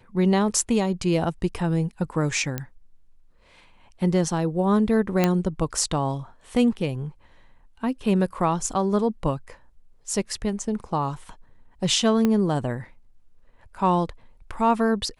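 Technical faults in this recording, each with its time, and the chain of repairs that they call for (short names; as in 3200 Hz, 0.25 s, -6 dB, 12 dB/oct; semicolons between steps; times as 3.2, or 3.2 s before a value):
2.58 pop -13 dBFS
5.24 pop -6 dBFS
12.25 pop -10 dBFS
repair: de-click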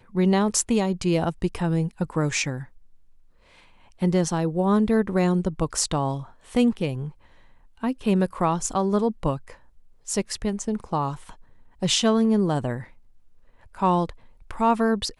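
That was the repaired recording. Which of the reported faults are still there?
12.25 pop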